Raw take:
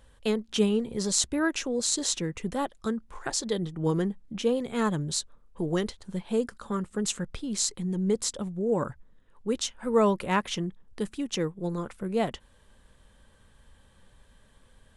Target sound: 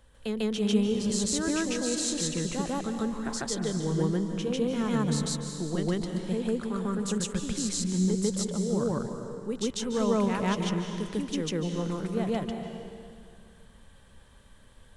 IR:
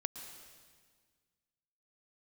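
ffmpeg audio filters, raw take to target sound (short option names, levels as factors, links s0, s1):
-filter_complex "[0:a]acrossover=split=250[s0][s1];[s1]acompressor=threshold=0.01:ratio=1.5[s2];[s0][s2]amix=inputs=2:normalize=0,aeval=exprs='0.501*(cos(1*acos(clip(val(0)/0.501,-1,1)))-cos(1*PI/2))+0.0178*(cos(5*acos(clip(val(0)/0.501,-1,1)))-cos(5*PI/2))':c=same,asplit=2[s3][s4];[1:a]atrim=start_sample=2205,asetrate=33957,aresample=44100,adelay=147[s5];[s4][s5]afir=irnorm=-1:irlink=0,volume=1.41[s6];[s3][s6]amix=inputs=2:normalize=0,volume=0.668"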